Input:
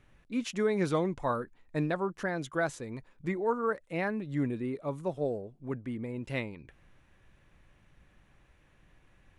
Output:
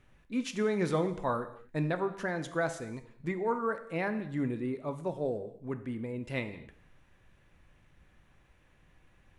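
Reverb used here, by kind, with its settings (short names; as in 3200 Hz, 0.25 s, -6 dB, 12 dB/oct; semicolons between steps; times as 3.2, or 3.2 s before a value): non-linear reverb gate 0.29 s falling, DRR 8.5 dB; gain -1 dB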